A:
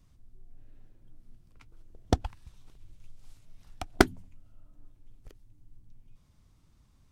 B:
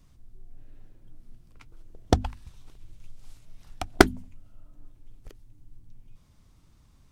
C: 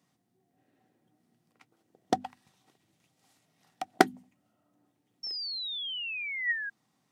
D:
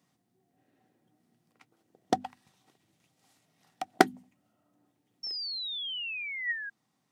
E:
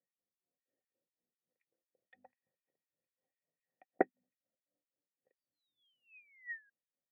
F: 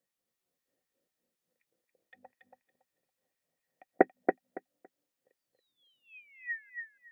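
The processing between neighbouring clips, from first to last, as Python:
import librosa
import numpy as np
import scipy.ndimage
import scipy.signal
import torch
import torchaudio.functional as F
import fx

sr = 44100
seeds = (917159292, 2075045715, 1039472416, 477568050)

y1 = fx.hum_notches(x, sr, base_hz=50, count=5)
y1 = y1 * 10.0 ** (5.0 / 20.0)
y2 = fx.spec_paint(y1, sr, seeds[0], shape='fall', start_s=5.23, length_s=1.47, low_hz=1600.0, high_hz=5500.0, level_db=-29.0)
y2 = scipy.signal.sosfilt(scipy.signal.butter(4, 170.0, 'highpass', fs=sr, output='sos'), y2)
y2 = fx.small_body(y2, sr, hz=(760.0, 1900.0), ring_ms=45, db=11)
y2 = y2 * 10.0 ** (-7.0 / 20.0)
y3 = fx.rider(y2, sr, range_db=10, speed_s=0.5)
y3 = y3 * 10.0 ** (-1.0 / 20.0)
y4 = fx.formant_cascade(y3, sr, vowel='e')
y4 = fx.harmonic_tremolo(y4, sr, hz=4.0, depth_pct=100, crossover_hz=1900.0)
y4 = fx.upward_expand(y4, sr, threshold_db=-59.0, expansion=1.5)
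y4 = y4 * 10.0 ** (6.5 / 20.0)
y5 = fx.echo_feedback(y4, sr, ms=280, feedback_pct=17, wet_db=-5)
y5 = y5 * 10.0 ** (7.0 / 20.0)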